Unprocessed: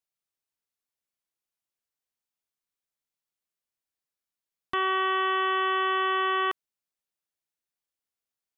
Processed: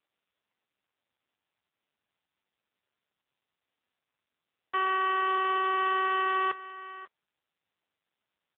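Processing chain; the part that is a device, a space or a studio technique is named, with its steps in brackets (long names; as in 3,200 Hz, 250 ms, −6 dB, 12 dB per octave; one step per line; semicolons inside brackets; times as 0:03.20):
0:04.75–0:05.80: dynamic equaliser 1,700 Hz, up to −4 dB, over −47 dBFS, Q 7.2
satellite phone (band-pass filter 400–3,000 Hz; single-tap delay 538 ms −15.5 dB; AMR narrowband 5.9 kbit/s 8,000 Hz)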